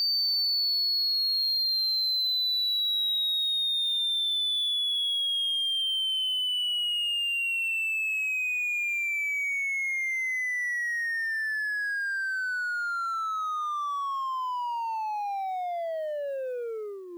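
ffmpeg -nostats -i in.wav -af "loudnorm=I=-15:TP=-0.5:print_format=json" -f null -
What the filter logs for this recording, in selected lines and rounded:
"input_i" : "-26.4",
"input_tp" : "-22.0",
"input_lra" : "8.6",
"input_thresh" : "-36.5",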